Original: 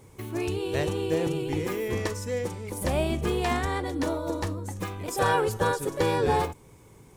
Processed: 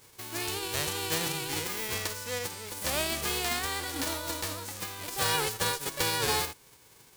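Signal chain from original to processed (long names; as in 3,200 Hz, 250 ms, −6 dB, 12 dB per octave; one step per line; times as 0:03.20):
spectral envelope flattened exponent 0.3
parametric band 4,500 Hz +2.5 dB 0.45 octaves
level −5 dB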